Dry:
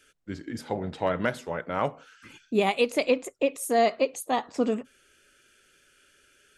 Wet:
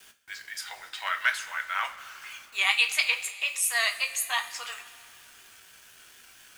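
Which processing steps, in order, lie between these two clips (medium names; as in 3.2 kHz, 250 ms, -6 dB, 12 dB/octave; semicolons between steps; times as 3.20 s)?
high-pass 1.4 kHz 24 dB/octave; vibrato 4.1 Hz 59 cents; word length cut 10-bit, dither none; two-slope reverb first 0.25 s, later 2.7 s, from -17 dB, DRR 4 dB; trim +7.5 dB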